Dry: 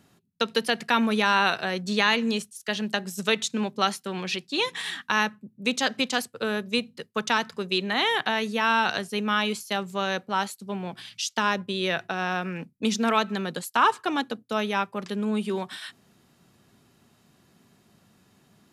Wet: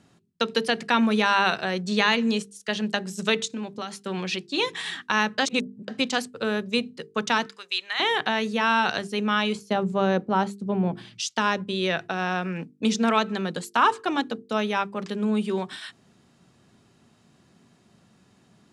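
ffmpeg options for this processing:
-filter_complex "[0:a]asettb=1/sr,asplit=3[a][b][c];[a]atrim=end=3.454[d];[b]atrim=start=3.45:end=4.06,asetpts=PTS-STARTPTS,afade=t=in:d=0.004:c=qsin,afade=t=out:st=0.606:d=0.004:c=qsin,acompressor=threshold=-31dB:ratio=4:attack=3.2:release=140:knee=1:detection=peak[e];[c]atrim=start=4.056[f];[d][e]acrossfade=d=0.004:c1=hsin:c2=qsin[g];[g][f]acrossfade=d=0.004:c1=qsin:c2=hsin,asettb=1/sr,asplit=3[h][i][j];[h]atrim=end=7.464[k];[i]atrim=start=7.46:end=8,asetpts=PTS-STARTPTS,afade=t=in:d=0.004:c=qsin,afade=t=out:st=0.536:d=0.004:c=qsin,highpass=1.4k[l];[j]atrim=start=7.996[m];[k][l]acrossfade=d=0.004:c1=hsin:c2=qsin[n];[n][m]acrossfade=d=0.004:c1=qsin:c2=hsin,asettb=1/sr,asplit=3[o][p][q];[o]atrim=end=9.554[r];[p]atrim=start=9.55:end=11.2,asetpts=PTS-STARTPTS,afade=t=in:d=0.004:c=qsin,afade=t=out:st=1.646:d=0.004:c=qsin,tiltshelf=f=1.2k:g=8[s];[q]atrim=start=11.196[t];[r][s]acrossfade=d=0.004:c1=hsin:c2=qsin[u];[u][t]acrossfade=d=0.004:c1=qsin:c2=hsin,asplit=3[v][w][x];[v]atrim=end=5.382[y];[w]atrim=start=5.378:end=5.882,asetpts=PTS-STARTPTS,areverse[z];[x]atrim=start=5.878[aa];[y][z]acrossfade=d=0.004:c1=hsin:c2=hsin[ab];[ab][aa]acrossfade=d=0.004:c1=hsin:c2=hsin,lowpass=f=9.6k:w=0.5412,lowpass=f=9.6k:w=1.3066,equalizer=f=190:w=0.36:g=3,bandreject=f=50:t=h:w=6,bandreject=f=100:t=h:w=6,bandreject=f=150:t=h:w=6,bandreject=f=200:t=h:w=6,bandreject=f=250:t=h:w=6,bandreject=f=300:t=h:w=6,bandreject=f=350:t=h:w=6,bandreject=f=400:t=h:w=6,bandreject=f=450:t=h:w=6"

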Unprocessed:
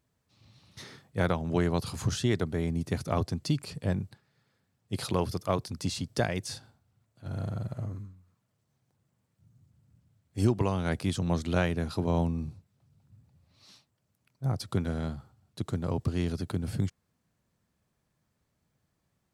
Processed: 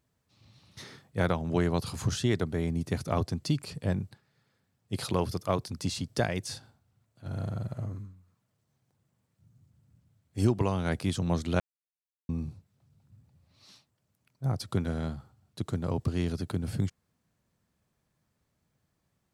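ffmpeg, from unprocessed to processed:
-filter_complex "[0:a]asplit=3[a][b][c];[a]atrim=end=11.6,asetpts=PTS-STARTPTS,afade=t=out:st=11.596:d=0.004:c=hsin[d];[b]atrim=start=11.6:end=12.29,asetpts=PTS-STARTPTS,volume=0[e];[c]atrim=start=12.29,asetpts=PTS-STARTPTS,afade=t=in:d=0.004:c=hsin[f];[d][e][f]concat=n=3:v=0:a=1"

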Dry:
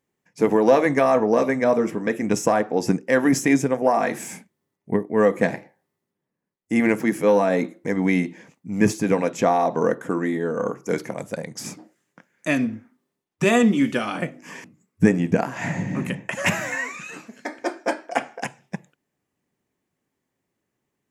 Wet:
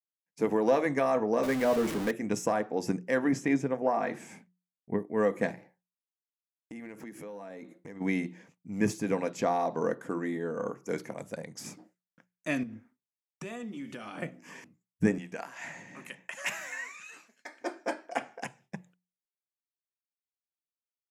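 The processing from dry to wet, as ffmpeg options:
-filter_complex "[0:a]asettb=1/sr,asplit=3[a][b][c];[a]atrim=end=1.434[d];[b]atrim=start=1.43:end=2.11,asetpts=PTS-STARTPTS,afade=t=in:d=0.004:c=qsin,afade=t=out:st=0.676:d=0.004:c=qsin,aeval=exprs='val(0)+0.5*0.0794*sgn(val(0))':c=same[e];[c]atrim=start=2.106[f];[d][e]acrossfade=d=0.004:c1=hsin:c2=qsin[g];[g][f]acrossfade=d=0.004:c1=qsin:c2=hsin,asettb=1/sr,asplit=3[h][i][j];[h]atrim=end=3.194[k];[i]atrim=start=3.19:end=4.98,asetpts=PTS-STARTPTS,afade=t=in:d=0.004:c=qsin,afade=t=out:st=1.786:d=0.004:c=qsin,aemphasis=mode=reproduction:type=50fm[l];[j]atrim=start=4.976[m];[k][l]acrossfade=d=0.004:c1=hsin:c2=qsin[n];[n][m]acrossfade=d=0.004:c1=qsin:c2=hsin,asplit=3[o][p][q];[o]afade=t=out:st=5.51:d=0.02[r];[p]acompressor=threshold=-32dB:ratio=6:attack=3.2:release=140:knee=1:detection=peak,afade=t=in:st=5.51:d=0.02,afade=t=out:st=8:d=0.02[s];[q]afade=t=in:st=8:d=0.02[t];[r][s][t]amix=inputs=3:normalize=0,asettb=1/sr,asplit=3[u][v][w];[u]atrim=end=9.254[x];[v]atrim=start=9.25:end=10.17,asetpts=PTS-STARTPTS,afade=t=in:d=0.004:c=qsin,afade=t=out:st=0.916:d=0.004:c=qsin,equalizer=f=4.6k:w=6.5:g=7.5[y];[w]atrim=start=10.166[z];[x][y]acrossfade=d=0.004:c1=hsin:c2=qsin[aa];[aa][z]acrossfade=d=0.004:c1=qsin:c2=hsin,asettb=1/sr,asplit=3[ab][ac][ad];[ab]atrim=end=12.634[ae];[ac]atrim=start=12.63:end=14.18,asetpts=PTS-STARTPTS,afade=t=in:d=0.004:c=qsin,afade=t=out:st=1.546:d=0.004:c=qsin,acompressor=threshold=-29dB:ratio=5:attack=3.2:release=140:knee=1:detection=peak[af];[ad]atrim=start=14.176[ag];[ae][af]acrossfade=d=0.004:c1=hsin:c2=qsin[ah];[ah][ag]acrossfade=d=0.004:c1=qsin:c2=hsin,asettb=1/sr,asplit=3[ai][aj][ak];[ai]atrim=end=15.184[al];[aj]atrim=start=15.18:end=17.61,asetpts=PTS-STARTPTS,afade=t=in:d=0.004:c=qsin,afade=t=out:st=2.426:d=0.004:c=qsin,highpass=f=1.4k:p=1[am];[ak]atrim=start=17.606[an];[al][am]acrossfade=d=0.004:c1=hsin:c2=qsin[ao];[ao][an]acrossfade=d=0.004:c1=qsin:c2=hsin,agate=range=-33dB:threshold=-47dB:ratio=3:detection=peak,bandreject=f=60:t=h:w=6,bandreject=f=120:t=h:w=6,bandreject=f=180:t=h:w=6,volume=-9dB"

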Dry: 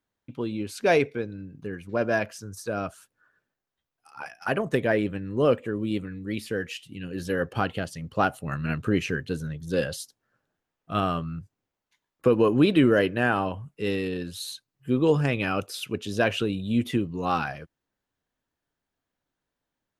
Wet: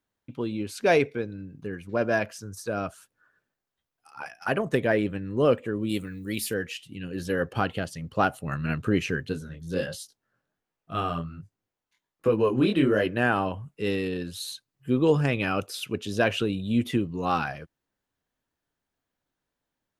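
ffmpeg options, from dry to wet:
-filter_complex "[0:a]asettb=1/sr,asplit=3[a][b][c];[a]atrim=end=5.894[d];[b]atrim=start=5.89:end=6.54,asetpts=PTS-STARTPTS,afade=t=in:d=0.004:c=qsin,afade=t=out:st=0.646:d=0.004:c=qsin,aemphasis=mode=production:type=75fm[e];[c]atrim=start=6.536[f];[d][e]acrossfade=d=0.004:c1=hsin:c2=qsin[g];[g][f]acrossfade=d=0.004:c1=qsin:c2=hsin,asplit=3[h][i][j];[h]afade=t=out:st=9.32:d=0.02[k];[i]flanger=delay=18:depth=6.4:speed=1.3,afade=t=in:st=9.32:d=0.02,afade=t=out:st=13.05:d=0.02[l];[j]afade=t=in:st=13.05:d=0.02[m];[k][l][m]amix=inputs=3:normalize=0"

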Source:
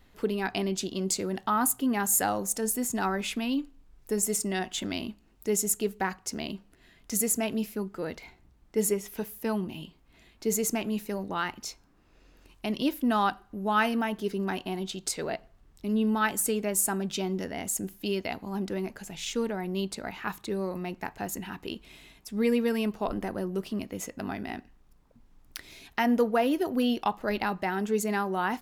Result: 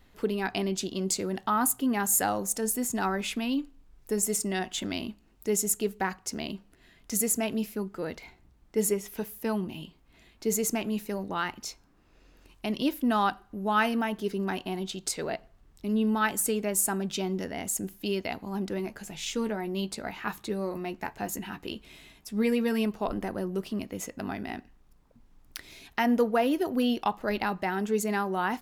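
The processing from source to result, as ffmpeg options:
-filter_complex "[0:a]asettb=1/sr,asplit=3[a][b][c];[a]atrim=end=18.784[d];[b]atrim=start=18.78:end=22.85,asetpts=PTS-STARTPTS,afade=t=in:d=0.004:c=qsin,afade=t=out:st=4.066:d=0.004:c=qsin,asplit=2[e][f];[f]adelay=14,volume=-9dB[g];[e][g]amix=inputs=2:normalize=0,atrim=end_sample=179487[h];[c]atrim=start=22.846[i];[d][h]acrossfade=d=0.004:c1=hsin:c2=qsin[j];[j][i]acrossfade=d=0.004:c1=qsin:c2=hsin"

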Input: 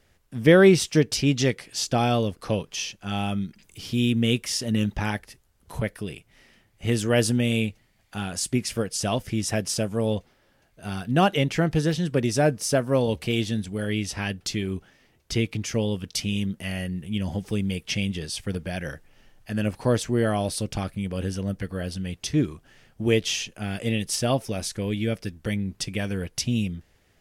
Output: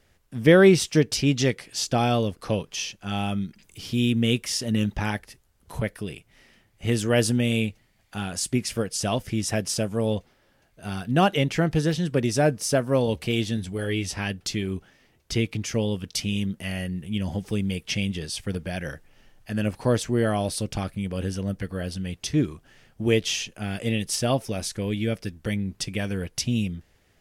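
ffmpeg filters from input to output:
-filter_complex "[0:a]asettb=1/sr,asplit=3[a][b][c];[a]atrim=end=13.564[d];[b]atrim=start=13.56:end=14.15,asetpts=PTS-STARTPTS,afade=t=in:d=0.004:c=qsin,afade=t=out:st=0.586:d=0.004:c=qsin,asplit=2[e][f];[f]adelay=12,volume=-7.5dB[g];[e][g]amix=inputs=2:normalize=0,atrim=end_sample=26019[h];[c]atrim=start=14.146[i];[d][h]acrossfade=d=0.004:c1=hsin:c2=qsin[j];[j][i]acrossfade=d=0.004:c1=qsin:c2=hsin"

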